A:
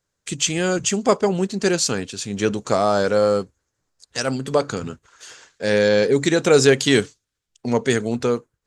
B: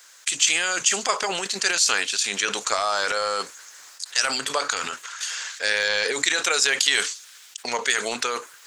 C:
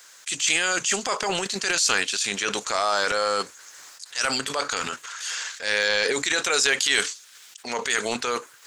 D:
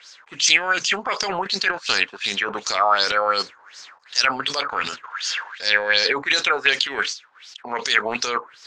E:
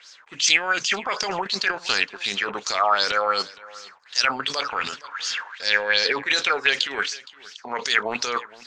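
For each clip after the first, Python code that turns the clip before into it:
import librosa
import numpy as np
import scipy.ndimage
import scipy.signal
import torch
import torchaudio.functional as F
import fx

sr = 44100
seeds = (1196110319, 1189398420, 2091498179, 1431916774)

y1 = scipy.signal.sosfilt(scipy.signal.butter(2, 1400.0, 'highpass', fs=sr, output='sos'), x)
y1 = fx.transient(y1, sr, attack_db=6, sustain_db=10)
y1 = fx.env_flatten(y1, sr, amount_pct=50)
y1 = y1 * 10.0 ** (-4.0 / 20.0)
y2 = fx.transient(y1, sr, attack_db=-2, sustain_db=-6)
y2 = fx.low_shelf(y2, sr, hz=300.0, db=9.0)
y2 = fx.transient(y2, sr, attack_db=-8, sustain_db=1)
y2 = y2 * 10.0 ** (1.0 / 20.0)
y3 = fx.filter_lfo_lowpass(y2, sr, shape='sine', hz=2.7, low_hz=880.0, high_hz=5500.0, q=5.0)
y3 = y3 * 10.0 ** (-1.0 / 20.0)
y4 = y3 + 10.0 ** (-21.0 / 20.0) * np.pad(y3, (int(466 * sr / 1000.0), 0))[:len(y3)]
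y4 = y4 * 10.0 ** (-2.0 / 20.0)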